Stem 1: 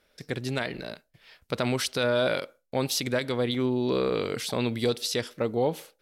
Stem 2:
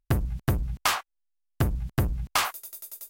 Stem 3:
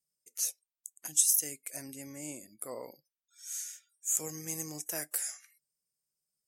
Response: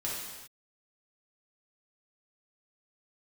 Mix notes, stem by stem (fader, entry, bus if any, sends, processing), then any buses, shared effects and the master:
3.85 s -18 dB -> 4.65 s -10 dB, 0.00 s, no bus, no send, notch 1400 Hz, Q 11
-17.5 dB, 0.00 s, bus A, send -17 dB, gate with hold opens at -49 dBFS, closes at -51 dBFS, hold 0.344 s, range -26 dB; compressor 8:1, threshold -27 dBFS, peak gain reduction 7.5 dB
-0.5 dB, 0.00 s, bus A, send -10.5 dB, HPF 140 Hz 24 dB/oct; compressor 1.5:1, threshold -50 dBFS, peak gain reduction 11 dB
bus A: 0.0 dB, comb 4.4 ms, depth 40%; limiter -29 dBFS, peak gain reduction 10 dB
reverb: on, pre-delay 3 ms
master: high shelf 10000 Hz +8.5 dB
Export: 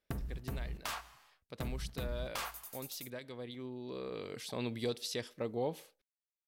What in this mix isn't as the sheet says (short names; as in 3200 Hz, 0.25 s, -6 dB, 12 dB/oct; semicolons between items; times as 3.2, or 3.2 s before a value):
stem 2 -17.5 dB -> -9.0 dB; stem 3: muted; master: missing high shelf 10000 Hz +8.5 dB